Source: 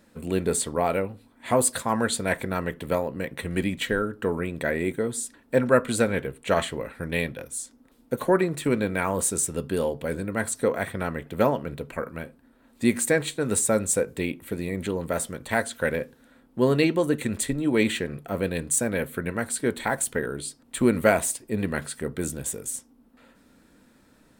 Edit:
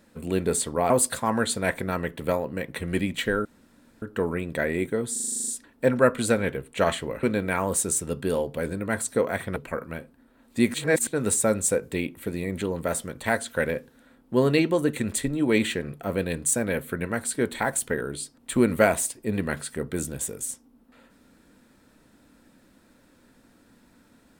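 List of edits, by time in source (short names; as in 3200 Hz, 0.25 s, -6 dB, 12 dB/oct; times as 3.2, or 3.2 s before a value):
0.9–1.53 cut
4.08 insert room tone 0.57 s
5.18 stutter 0.04 s, 10 plays
6.93–8.7 cut
11.03–11.81 cut
12.99–13.32 reverse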